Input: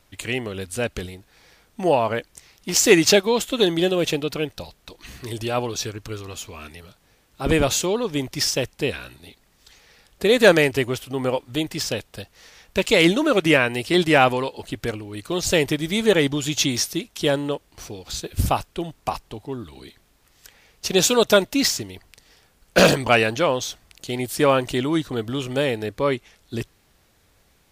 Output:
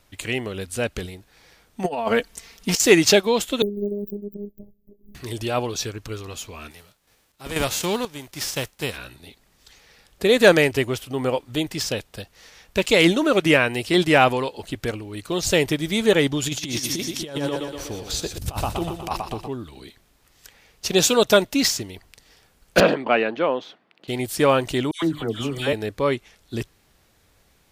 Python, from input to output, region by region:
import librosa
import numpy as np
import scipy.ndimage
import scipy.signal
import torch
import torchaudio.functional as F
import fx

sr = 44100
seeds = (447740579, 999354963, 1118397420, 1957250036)

y = fx.chain(x, sr, fx.comb(ms=4.4, depth=0.77),
    fx.over_compress(threshold_db=-21.0, ratio=-0.5), at=(1.84, 2.8))
y = fx.chain(y, sr, fx.self_delay(depth_ms=0.36),
    fx.cheby2_bandstop(low_hz=1700.0, high_hz=5900.0, order=4, stop_db=80),
    fx.robotise(hz=204.0), at=(3.62, 5.15))
y = fx.envelope_flatten(y, sr, power=0.6, at=(6.7, 8.96), fade=0.02)
y = fx.tremolo_random(y, sr, seeds[0], hz=4.1, depth_pct=95, at=(6.7, 8.96), fade=0.02)
y = fx.chain(y, sr, fx.echo_feedback(ms=121, feedback_pct=57, wet_db=-9),
    fx.over_compress(threshold_db=-25.0, ratio=-0.5), at=(16.42, 19.48))
y = fx.chain(y, sr, fx.highpass(hz=200.0, slope=24),
    fx.air_absorb(metres=400.0), at=(22.8, 24.08))
y = fx.chain(y, sr, fx.hum_notches(base_hz=50, count=6),
    fx.dispersion(late='lows', ms=114.0, hz=1600.0), at=(24.91, 25.73))